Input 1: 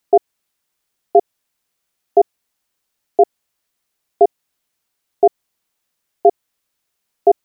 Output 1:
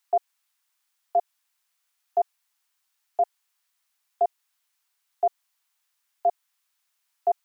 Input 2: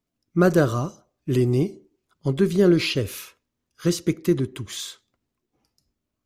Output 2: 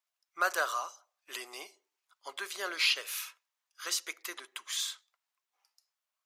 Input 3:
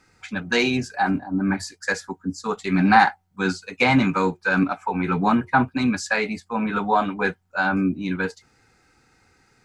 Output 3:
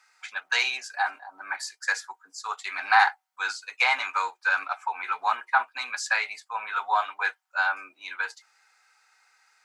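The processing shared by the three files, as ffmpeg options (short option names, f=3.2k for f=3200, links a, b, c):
-af "highpass=f=840:w=0.5412,highpass=f=840:w=1.3066,volume=-1dB"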